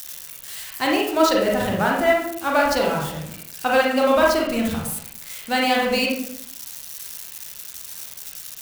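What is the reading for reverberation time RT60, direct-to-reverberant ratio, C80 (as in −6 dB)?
0.70 s, −2.5 dB, 6.0 dB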